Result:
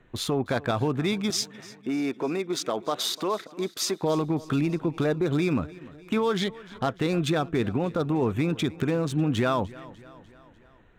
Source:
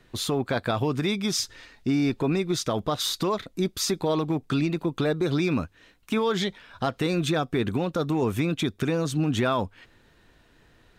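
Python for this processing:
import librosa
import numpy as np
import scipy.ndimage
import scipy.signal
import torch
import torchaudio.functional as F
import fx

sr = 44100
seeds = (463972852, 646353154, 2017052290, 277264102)

y = fx.wiener(x, sr, points=9)
y = fx.highpass(y, sr, hz=310.0, slope=12, at=(1.3, 4.03))
y = fx.echo_feedback(y, sr, ms=298, feedback_pct=56, wet_db=-20.0)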